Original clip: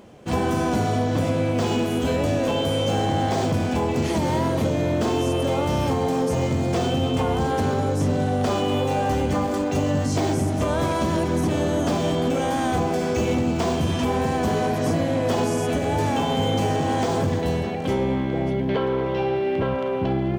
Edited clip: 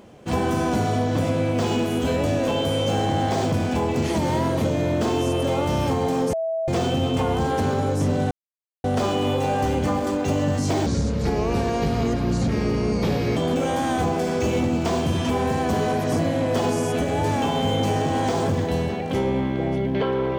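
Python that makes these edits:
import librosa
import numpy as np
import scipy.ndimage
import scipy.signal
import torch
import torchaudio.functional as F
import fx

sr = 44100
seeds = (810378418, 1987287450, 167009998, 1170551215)

y = fx.edit(x, sr, fx.bleep(start_s=6.33, length_s=0.35, hz=653.0, db=-22.0),
    fx.insert_silence(at_s=8.31, length_s=0.53),
    fx.speed_span(start_s=10.33, length_s=1.78, speed=0.71), tone=tone)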